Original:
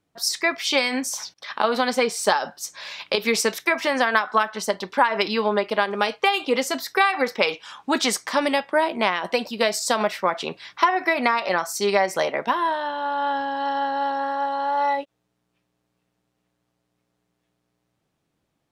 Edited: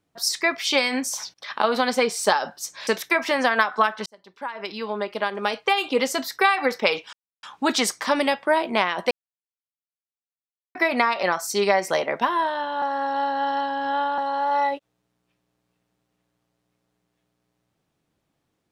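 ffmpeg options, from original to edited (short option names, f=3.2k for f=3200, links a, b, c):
-filter_complex "[0:a]asplit=8[a][b][c][d][e][f][g][h];[a]atrim=end=2.872[i];[b]atrim=start=3.428:end=4.62,asetpts=PTS-STARTPTS,afade=t=out:st=1.188:d=0.004:c=hsin[j];[c]atrim=start=4.62:end=7.69,asetpts=PTS-STARTPTS,afade=t=in:d=1.87,afade=t=out:st=3.066:d=0.004:c=hsin,apad=pad_dur=0.3[k];[d]atrim=start=7.69:end=9.37,asetpts=PTS-STARTPTS,afade=t=in:d=0.004:c=hsin,afade=t=out:st=1.676:d=0.004:c=hsin[l];[e]atrim=start=9.37:end=11.01,asetpts=PTS-STARTPTS,volume=0[m];[f]atrim=start=11.01:end=13.082,asetpts=PTS-STARTPTS,afade=t=in:d=0.004:c=hsin[n];[g]atrim=start=13.078:end=14.442,asetpts=PTS-STARTPTS,areverse[o];[h]atrim=start=14.438[p];[j][k][l][m][n]concat=n=5:v=0:a=1[q];[i][q]acrossfade=d=0.004:c1=hsin:c2=hsin[r];[r][o]acrossfade=d=0.004:c1=hsin:c2=hsin[s];[s][p]acrossfade=d=0.004:c1=hsin:c2=hsin"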